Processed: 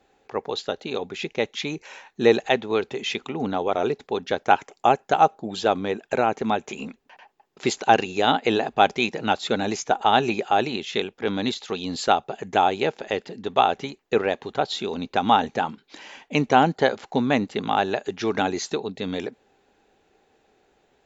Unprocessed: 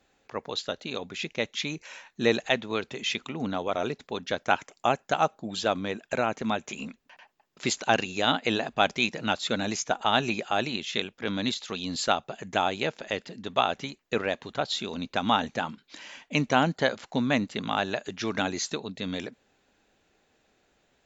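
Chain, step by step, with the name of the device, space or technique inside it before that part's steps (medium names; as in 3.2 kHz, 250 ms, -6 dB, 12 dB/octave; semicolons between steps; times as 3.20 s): inside a helmet (treble shelf 5.8 kHz -5 dB; small resonant body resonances 410/790 Hz, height 8 dB, ringing for 20 ms); trim +2 dB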